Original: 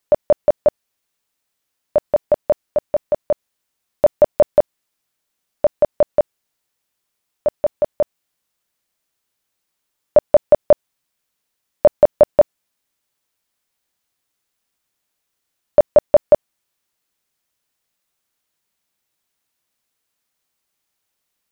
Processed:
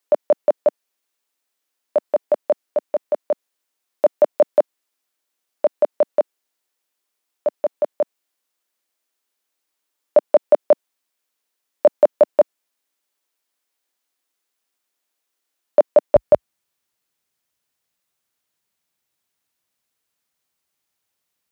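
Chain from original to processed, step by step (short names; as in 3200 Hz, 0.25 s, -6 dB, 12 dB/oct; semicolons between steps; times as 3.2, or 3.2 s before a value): HPF 250 Hz 24 dB/oct, from 16.16 s 55 Hz; gain -2 dB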